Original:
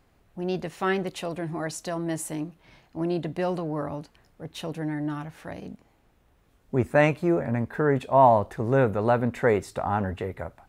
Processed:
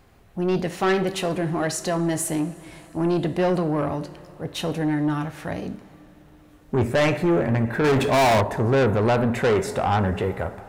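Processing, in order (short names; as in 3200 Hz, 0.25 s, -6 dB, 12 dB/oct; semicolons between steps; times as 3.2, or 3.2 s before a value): two-slope reverb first 0.5 s, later 4.9 s, from -19 dB, DRR 10 dB; soft clip -23.5 dBFS, distortion -7 dB; 7.84–8.41 sample leveller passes 2; gain +8 dB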